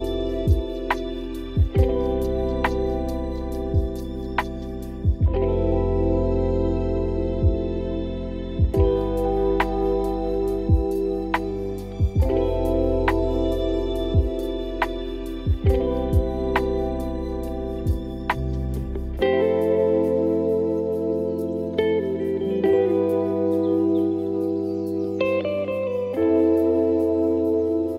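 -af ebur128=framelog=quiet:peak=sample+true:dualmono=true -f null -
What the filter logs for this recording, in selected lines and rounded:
Integrated loudness:
  I:         -20.3 LUFS
  Threshold: -30.3 LUFS
Loudness range:
  LRA:         2.8 LU
  Threshold: -40.4 LUFS
  LRA low:   -21.9 LUFS
  LRA high:  -19.1 LUFS
Sample peak:
  Peak:       -6.9 dBFS
True peak:
  Peak:       -6.9 dBFS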